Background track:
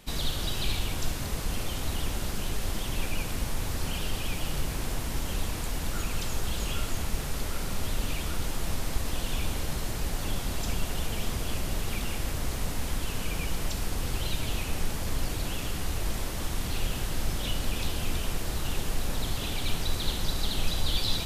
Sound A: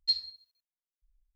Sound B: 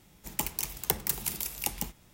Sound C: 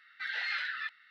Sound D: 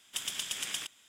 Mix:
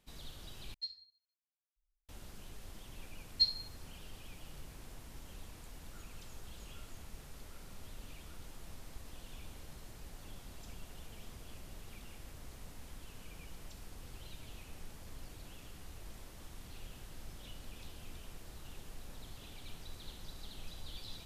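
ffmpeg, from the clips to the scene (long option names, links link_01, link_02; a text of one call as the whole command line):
ffmpeg -i bed.wav -i cue0.wav -filter_complex "[1:a]asplit=2[link_01][link_02];[0:a]volume=-19.5dB,asplit=2[link_03][link_04];[link_03]atrim=end=0.744[link_05];[link_01]atrim=end=1.35,asetpts=PTS-STARTPTS,volume=-14.5dB[link_06];[link_04]atrim=start=2.086[link_07];[link_02]atrim=end=1.35,asetpts=PTS-STARTPTS,volume=-1.5dB,afade=type=in:duration=0.004:curve=hsin,afade=type=out:start_time=1.346:duration=0.004:curve=hsin,adelay=3320[link_08];[link_05][link_06]acrossfade=duration=0.004:curve1=hsin:curve2=hsin[link_09];[link_09][link_07]acrossfade=duration=0.004:curve1=hsin:curve2=hsin[link_10];[link_10][link_08]amix=inputs=2:normalize=0" out.wav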